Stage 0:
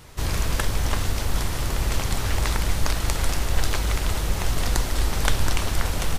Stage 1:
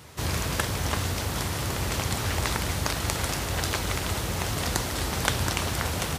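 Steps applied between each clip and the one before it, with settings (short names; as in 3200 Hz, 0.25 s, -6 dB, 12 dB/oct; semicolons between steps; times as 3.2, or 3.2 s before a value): HPF 71 Hz 24 dB/oct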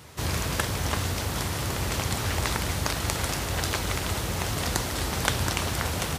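nothing audible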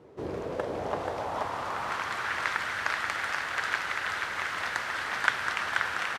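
band-pass sweep 400 Hz -> 1600 Hz, 0.24–2.15; echo 0.482 s -3.5 dB; gain +5.5 dB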